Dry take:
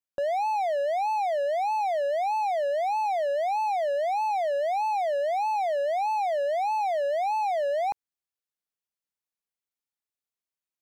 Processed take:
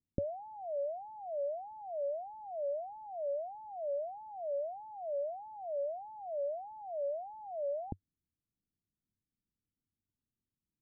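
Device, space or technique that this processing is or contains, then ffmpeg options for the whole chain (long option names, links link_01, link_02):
the neighbour's flat through the wall: -af "lowpass=frequency=280:width=0.5412,lowpass=frequency=280:width=1.3066,equalizer=frequency=95:width_type=o:width=0.44:gain=5.5,volume=16.5dB"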